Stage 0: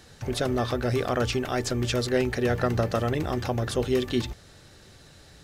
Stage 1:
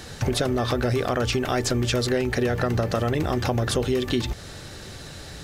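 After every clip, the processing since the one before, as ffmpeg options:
-filter_complex "[0:a]asplit=2[a][b];[b]alimiter=limit=-20.5dB:level=0:latency=1,volume=-1dB[c];[a][c]amix=inputs=2:normalize=0,acompressor=threshold=-27dB:ratio=6,volume=6.5dB"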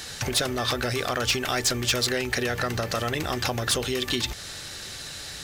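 -af "tiltshelf=f=1.1k:g=-7,asoftclip=type=hard:threshold=-17dB"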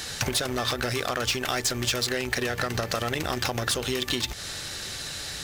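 -filter_complex "[0:a]asplit=2[a][b];[b]acrusher=bits=3:mix=0:aa=0.5,volume=-5dB[c];[a][c]amix=inputs=2:normalize=0,acompressor=threshold=-26dB:ratio=6,volume=2.5dB"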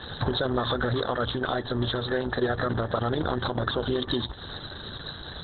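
-af "asuperstop=centerf=2400:order=4:qfactor=1.3,volume=4.5dB" -ar 48000 -c:a libopus -b:a 8k

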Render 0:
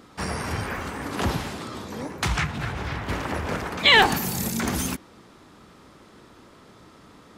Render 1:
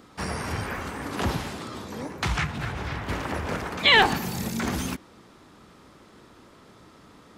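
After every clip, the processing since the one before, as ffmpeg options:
-filter_complex "[0:a]acrossover=split=5400[a][b];[b]acompressor=threshold=-37dB:ratio=4:attack=1:release=60[c];[a][c]amix=inputs=2:normalize=0,volume=-1.5dB"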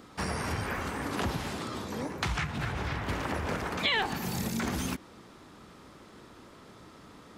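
-af "acompressor=threshold=-29dB:ratio=3"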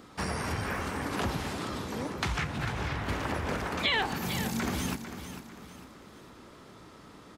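-af "aecho=1:1:448|896|1344|1792:0.299|0.113|0.0431|0.0164"

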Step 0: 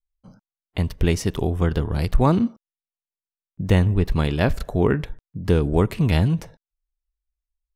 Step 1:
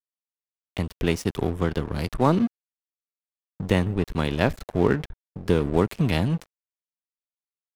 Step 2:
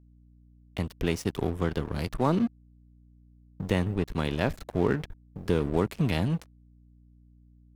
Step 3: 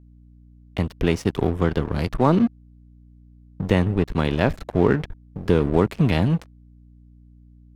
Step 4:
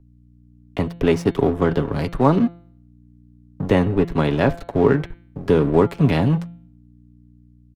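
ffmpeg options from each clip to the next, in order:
-filter_complex "[0:a]acrossover=split=140[a][b];[a]acompressor=threshold=-28dB:ratio=6[c];[c][b]amix=inputs=2:normalize=0,aeval=exprs='sgn(val(0))*max(abs(val(0))-0.02,0)':c=same"
-filter_complex "[0:a]asplit=2[a][b];[b]alimiter=limit=-12.5dB:level=0:latency=1:release=31,volume=-3dB[c];[a][c]amix=inputs=2:normalize=0,acrusher=bits=10:mix=0:aa=0.000001,aeval=exprs='val(0)+0.00447*(sin(2*PI*60*n/s)+sin(2*PI*2*60*n/s)/2+sin(2*PI*3*60*n/s)/3+sin(2*PI*4*60*n/s)/4+sin(2*PI*5*60*n/s)/5)':c=same,volume=-8dB"
-af "aemphasis=mode=reproduction:type=cd,volume=7dB"
-filter_complex "[0:a]aecho=1:1:7.2:0.36,bandreject=f=171.2:t=h:w=4,bandreject=f=342.4:t=h:w=4,bandreject=f=513.6:t=h:w=4,bandreject=f=684.8:t=h:w=4,bandreject=f=856:t=h:w=4,bandreject=f=1.0272k:t=h:w=4,bandreject=f=1.1984k:t=h:w=4,bandreject=f=1.3696k:t=h:w=4,bandreject=f=1.5408k:t=h:w=4,bandreject=f=1.712k:t=h:w=4,bandreject=f=1.8832k:t=h:w=4,bandreject=f=2.0544k:t=h:w=4,bandreject=f=2.2256k:t=h:w=4,bandreject=f=2.3968k:t=h:w=4,bandreject=f=2.568k:t=h:w=4,bandreject=f=2.7392k:t=h:w=4,bandreject=f=2.9104k:t=h:w=4,bandreject=f=3.0816k:t=h:w=4,bandreject=f=3.2528k:t=h:w=4,bandreject=f=3.424k:t=h:w=4,bandreject=f=3.5952k:t=h:w=4,bandreject=f=3.7664k:t=h:w=4,bandreject=f=3.9376k:t=h:w=4,bandreject=f=4.1088k:t=h:w=4,bandreject=f=4.28k:t=h:w=4,acrossover=split=180|1500[a][b][c];[b]dynaudnorm=f=140:g=7:m=6dB[d];[a][d][c]amix=inputs=3:normalize=0,volume=-1dB"

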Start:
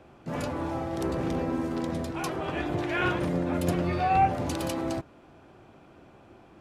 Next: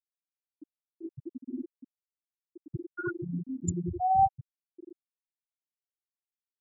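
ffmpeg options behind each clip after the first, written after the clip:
-af "highshelf=f=5.6k:t=q:w=3:g=11,afftfilt=real='re*gte(hypot(re,im),0.316)':imag='im*gte(hypot(re,im),0.316)':win_size=1024:overlap=0.75"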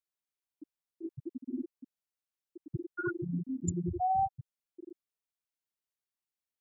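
-af "acompressor=threshold=-27dB:ratio=5"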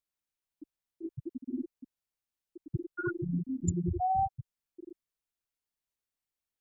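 -af "lowshelf=f=87:g=11.5"

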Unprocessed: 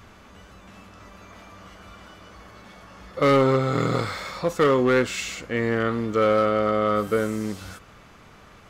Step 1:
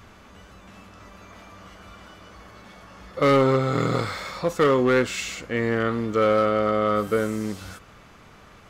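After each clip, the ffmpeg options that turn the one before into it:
-af anull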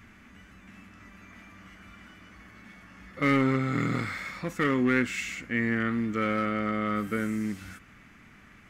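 -af "equalizer=f=250:t=o:w=1:g=8,equalizer=f=500:t=o:w=1:g=-9,equalizer=f=1k:t=o:w=1:g=-5,equalizer=f=2k:t=o:w=1:g=10,equalizer=f=4k:t=o:w=1:g=-6,volume=-6dB"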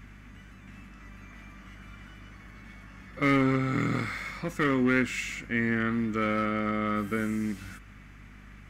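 -af "aeval=exprs='val(0)+0.00355*(sin(2*PI*50*n/s)+sin(2*PI*2*50*n/s)/2+sin(2*PI*3*50*n/s)/3+sin(2*PI*4*50*n/s)/4+sin(2*PI*5*50*n/s)/5)':c=same"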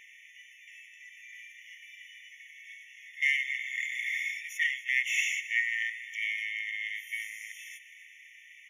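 -filter_complex "[0:a]asplit=2[a][b];[b]asoftclip=type=tanh:threshold=-30.5dB,volume=-9dB[c];[a][c]amix=inputs=2:normalize=0,aecho=1:1:266|532|798|1064:0.141|0.0622|0.0273|0.012,afftfilt=real='re*eq(mod(floor(b*sr/1024/1800),2),1)':imag='im*eq(mod(floor(b*sr/1024/1800),2),1)':win_size=1024:overlap=0.75,volume=3.5dB"

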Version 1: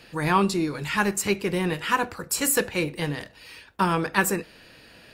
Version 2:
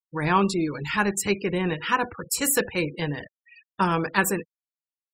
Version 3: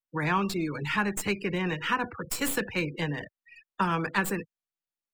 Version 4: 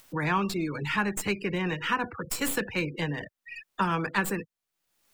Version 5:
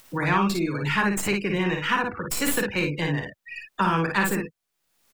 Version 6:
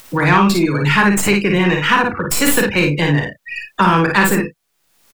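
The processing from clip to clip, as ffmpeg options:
-af "agate=range=-33dB:threshold=-44dB:ratio=3:detection=peak,afftfilt=real='re*gte(hypot(re,im),0.02)':imag='im*gte(hypot(re,im),0.02)':win_size=1024:overlap=0.75"
-filter_complex "[0:a]acrossover=split=87|300|940[a][b][c][d];[a]acompressor=threshold=-55dB:ratio=4[e];[b]acompressor=threshold=-30dB:ratio=4[f];[c]acompressor=threshold=-36dB:ratio=4[g];[d]acompressor=threshold=-25dB:ratio=4[h];[e][f][g][h]amix=inputs=4:normalize=0,acrossover=split=140|680|3500[i][j][k][l];[l]aeval=exprs='max(val(0),0)':c=same[m];[i][j][k][m]amix=inputs=4:normalize=0"
-af "acompressor=mode=upward:threshold=-30dB:ratio=2.5"
-af "aecho=1:1:41|55:0.266|0.631,volume=3dB"
-filter_complex "[0:a]asplit=2[a][b];[b]adelay=34,volume=-13dB[c];[a][c]amix=inputs=2:normalize=0,asplit=2[d][e];[e]asoftclip=type=tanh:threshold=-19.5dB,volume=-4dB[f];[d][f]amix=inputs=2:normalize=0,volume=6.5dB"

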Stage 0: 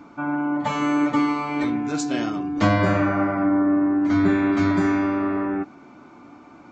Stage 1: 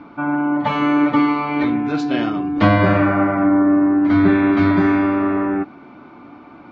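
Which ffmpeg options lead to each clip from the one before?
-af "lowpass=f=4k:w=0.5412,lowpass=f=4k:w=1.3066,volume=5dB"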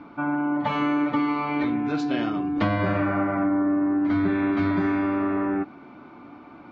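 -af "acompressor=threshold=-17dB:ratio=3,volume=-4dB"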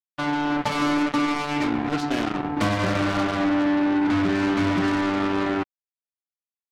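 -af "acrusher=bits=3:mix=0:aa=0.5"

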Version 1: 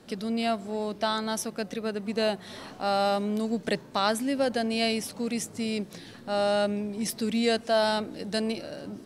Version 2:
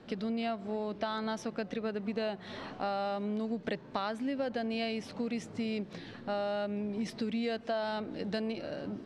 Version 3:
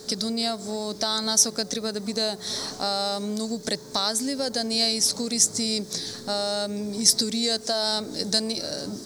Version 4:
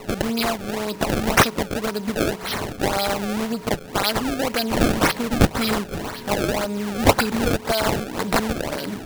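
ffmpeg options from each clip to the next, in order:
-af "lowpass=3.4k,acompressor=threshold=-31dB:ratio=6"
-af "aexciter=amount=11.6:drive=9.8:freq=4.5k,aeval=exprs='val(0)+0.00355*sin(2*PI*430*n/s)':c=same,volume=5dB"
-af "aeval=exprs='val(0)+0.00355*sin(2*PI*950*n/s)':c=same,acrusher=samples=26:mix=1:aa=0.000001:lfo=1:lforange=41.6:lforate=1.9,volume=4dB"

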